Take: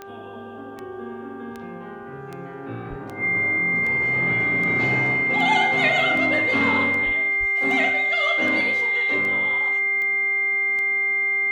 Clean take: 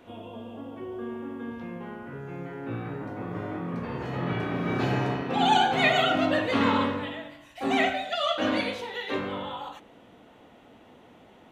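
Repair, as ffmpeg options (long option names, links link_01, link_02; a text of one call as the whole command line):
ffmpeg -i in.wav -filter_complex "[0:a]adeclick=threshold=4,bandreject=frequency=394.8:width_type=h:width=4,bandreject=frequency=789.6:width_type=h:width=4,bandreject=frequency=1184.4:width_type=h:width=4,bandreject=frequency=1579.2:width_type=h:width=4,bandreject=frequency=2100:width=30,asplit=3[link_01][link_02][link_03];[link_01]afade=type=out:start_time=2.89:duration=0.02[link_04];[link_02]highpass=frequency=140:width=0.5412,highpass=frequency=140:width=1.3066,afade=type=in:start_time=2.89:duration=0.02,afade=type=out:start_time=3.01:duration=0.02[link_05];[link_03]afade=type=in:start_time=3.01:duration=0.02[link_06];[link_04][link_05][link_06]amix=inputs=3:normalize=0,asplit=3[link_07][link_08][link_09];[link_07]afade=type=out:start_time=7.05:duration=0.02[link_10];[link_08]highpass=frequency=140:width=0.5412,highpass=frequency=140:width=1.3066,afade=type=in:start_time=7.05:duration=0.02,afade=type=out:start_time=7.17:duration=0.02[link_11];[link_09]afade=type=in:start_time=7.17:duration=0.02[link_12];[link_10][link_11][link_12]amix=inputs=3:normalize=0,asplit=3[link_13][link_14][link_15];[link_13]afade=type=out:start_time=7.39:duration=0.02[link_16];[link_14]highpass=frequency=140:width=0.5412,highpass=frequency=140:width=1.3066,afade=type=in:start_time=7.39:duration=0.02,afade=type=out:start_time=7.51:duration=0.02[link_17];[link_15]afade=type=in:start_time=7.51:duration=0.02[link_18];[link_16][link_17][link_18]amix=inputs=3:normalize=0" out.wav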